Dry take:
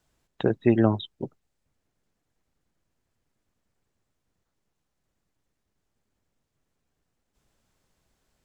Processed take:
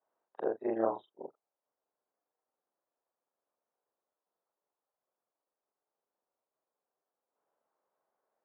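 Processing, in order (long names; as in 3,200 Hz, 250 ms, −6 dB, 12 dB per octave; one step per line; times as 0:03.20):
every overlapping window played backwards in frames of 89 ms
flat-topped band-pass 750 Hz, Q 0.98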